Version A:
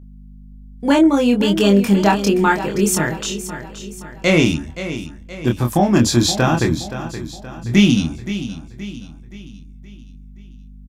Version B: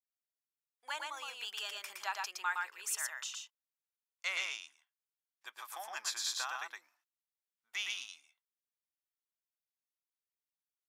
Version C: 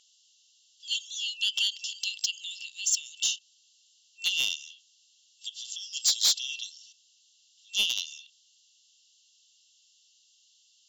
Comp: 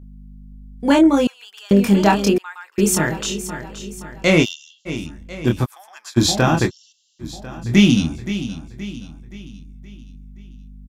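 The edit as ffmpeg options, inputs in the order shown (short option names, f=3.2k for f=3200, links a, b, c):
-filter_complex "[1:a]asplit=3[a][b][c];[2:a]asplit=2[d][e];[0:a]asplit=6[f][g][h][i][j][k];[f]atrim=end=1.272[l];[a]atrim=start=1.268:end=1.712[m];[g]atrim=start=1.708:end=2.382[n];[b]atrim=start=2.378:end=2.782[o];[h]atrim=start=2.778:end=4.46[p];[d]atrim=start=4.42:end=4.89[q];[i]atrim=start=4.85:end=5.66[r];[c]atrim=start=5.64:end=6.18[s];[j]atrim=start=6.16:end=6.71[t];[e]atrim=start=6.65:end=7.25[u];[k]atrim=start=7.19[v];[l][m]acrossfade=d=0.004:c1=hsin:c2=hsin[w];[w][n]acrossfade=d=0.004:c1=hsin:c2=hsin[x];[x][o]acrossfade=d=0.004:c1=hsin:c2=hsin[y];[y][p]acrossfade=d=0.004:c1=hsin:c2=hsin[z];[z][q]acrossfade=d=0.04:c1=tri:c2=tri[aa];[aa][r]acrossfade=d=0.04:c1=tri:c2=tri[ab];[ab][s]acrossfade=d=0.02:c1=tri:c2=tri[ac];[ac][t]acrossfade=d=0.02:c1=tri:c2=tri[ad];[ad][u]acrossfade=d=0.06:c1=tri:c2=tri[ae];[ae][v]acrossfade=d=0.06:c1=tri:c2=tri"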